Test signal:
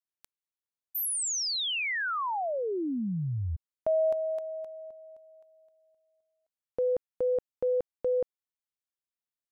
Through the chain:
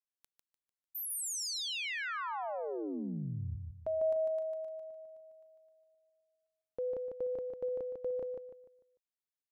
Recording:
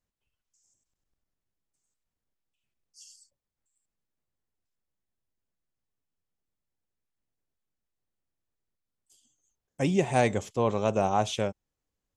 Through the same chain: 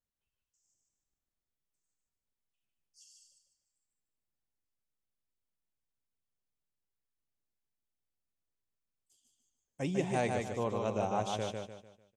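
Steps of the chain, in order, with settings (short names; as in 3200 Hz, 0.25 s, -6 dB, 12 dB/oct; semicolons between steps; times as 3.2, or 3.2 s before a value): feedback echo 0.149 s, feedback 36%, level -4 dB; gain -8.5 dB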